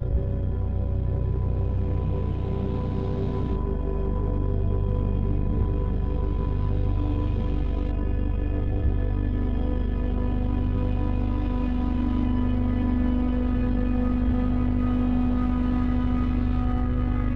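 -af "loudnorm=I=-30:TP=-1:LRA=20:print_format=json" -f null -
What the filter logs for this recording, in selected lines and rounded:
"input_i" : "-26.2",
"input_tp" : "-13.1",
"input_lra" : "2.5",
"input_thresh" : "-36.2",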